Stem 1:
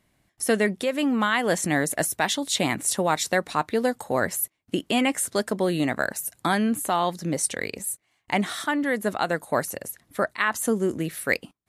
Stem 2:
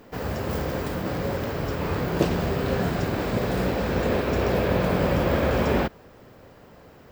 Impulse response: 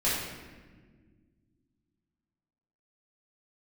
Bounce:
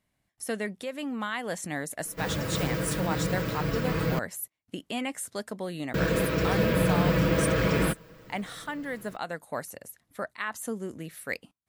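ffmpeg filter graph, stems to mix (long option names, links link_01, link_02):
-filter_complex "[0:a]volume=-9.5dB[link_01];[1:a]equalizer=frequency=780:width=3:gain=-13,aecho=1:1:6.2:0.76,adelay=2050,volume=-1.5dB,asplit=3[link_02][link_03][link_04];[link_02]atrim=end=4.19,asetpts=PTS-STARTPTS,afade=type=out:start_time=4.186:duration=0.004:curve=hsin[link_05];[link_03]atrim=start=4.19:end=5.94,asetpts=PTS-STARTPTS,volume=0[link_06];[link_04]atrim=start=5.94,asetpts=PTS-STARTPTS,afade=type=in:duration=0.004:curve=hsin[link_07];[link_05][link_06][link_07]concat=n=3:v=0:a=1[link_08];[link_01][link_08]amix=inputs=2:normalize=0,equalizer=frequency=350:width_type=o:width=0.36:gain=-4.5"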